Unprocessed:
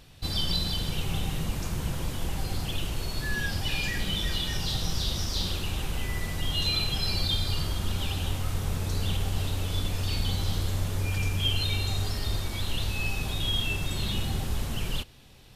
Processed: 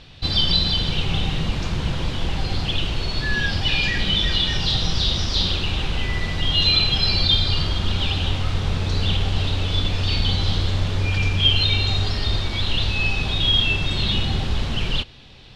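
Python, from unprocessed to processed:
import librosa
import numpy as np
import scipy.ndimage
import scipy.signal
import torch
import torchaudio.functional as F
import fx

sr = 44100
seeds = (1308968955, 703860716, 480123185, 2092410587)

y = fx.lowpass_res(x, sr, hz=3900.0, q=1.6)
y = y * 10.0 ** (7.0 / 20.0)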